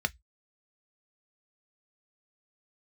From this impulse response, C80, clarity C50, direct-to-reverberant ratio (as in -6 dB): 45.0 dB, 31.5 dB, 9.5 dB